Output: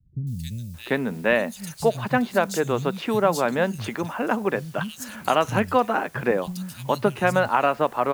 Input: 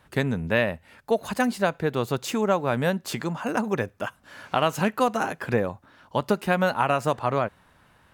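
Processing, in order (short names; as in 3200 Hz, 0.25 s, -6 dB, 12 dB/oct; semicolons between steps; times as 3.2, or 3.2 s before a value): in parallel at -4 dB: requantised 8-bit, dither triangular; on the sum: three bands offset in time lows, highs, mids 0.27/0.74 s, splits 170/3800 Hz; gain -1.5 dB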